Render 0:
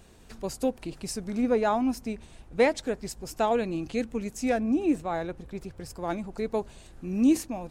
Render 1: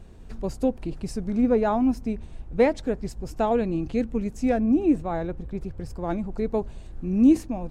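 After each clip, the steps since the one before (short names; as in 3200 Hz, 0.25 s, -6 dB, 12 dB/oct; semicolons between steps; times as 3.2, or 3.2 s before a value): tilt -2.5 dB/oct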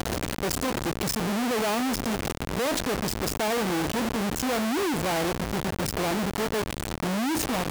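infinite clipping; HPF 160 Hz 6 dB/oct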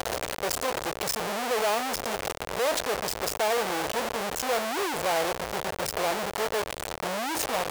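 resonant low shelf 370 Hz -10 dB, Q 1.5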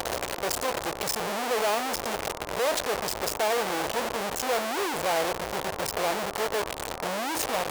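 band noise 270–1100 Hz -43 dBFS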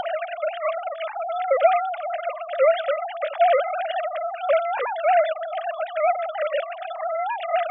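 sine-wave speech; gain +5.5 dB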